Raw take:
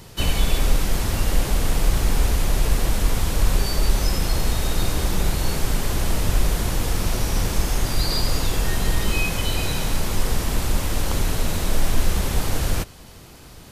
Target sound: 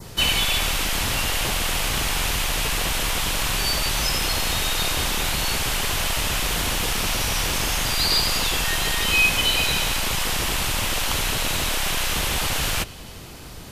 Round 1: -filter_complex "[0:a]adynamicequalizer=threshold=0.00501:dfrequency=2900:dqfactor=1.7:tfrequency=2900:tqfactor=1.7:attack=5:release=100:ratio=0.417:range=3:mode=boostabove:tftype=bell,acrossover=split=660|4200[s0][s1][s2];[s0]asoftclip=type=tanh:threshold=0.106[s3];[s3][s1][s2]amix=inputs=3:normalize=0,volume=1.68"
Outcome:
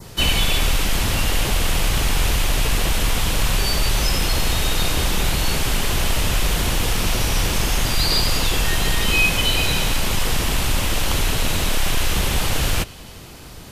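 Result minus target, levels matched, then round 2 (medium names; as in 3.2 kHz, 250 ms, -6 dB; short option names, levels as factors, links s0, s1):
saturation: distortion -5 dB
-filter_complex "[0:a]adynamicequalizer=threshold=0.00501:dfrequency=2900:dqfactor=1.7:tfrequency=2900:tqfactor=1.7:attack=5:release=100:ratio=0.417:range=3:mode=boostabove:tftype=bell,acrossover=split=660|4200[s0][s1][s2];[s0]asoftclip=type=tanh:threshold=0.0316[s3];[s3][s1][s2]amix=inputs=3:normalize=0,volume=1.68"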